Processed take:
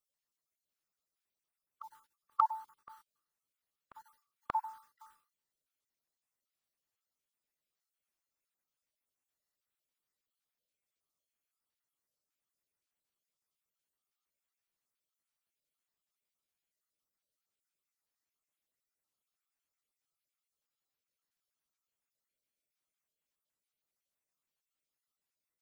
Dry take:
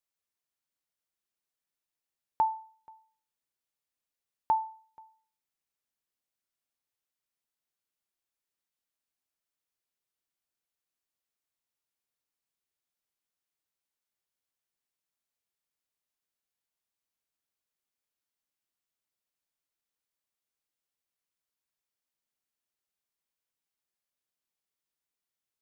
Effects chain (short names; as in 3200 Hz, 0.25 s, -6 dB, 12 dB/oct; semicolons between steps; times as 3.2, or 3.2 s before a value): random spectral dropouts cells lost 32%; reverse echo 0.583 s -21.5 dB; formant shift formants +5 st